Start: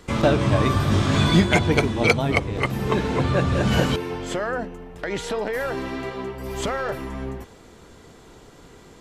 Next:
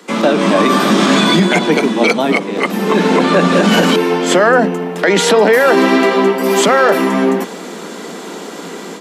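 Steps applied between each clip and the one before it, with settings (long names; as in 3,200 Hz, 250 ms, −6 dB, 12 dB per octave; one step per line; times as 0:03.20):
Butterworth high-pass 170 Hz 96 dB per octave
automatic gain control gain up to 13 dB
boost into a limiter +9 dB
level −1 dB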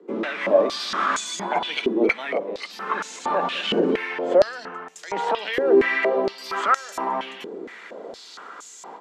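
band-pass on a step sequencer 4.3 Hz 380–6,900 Hz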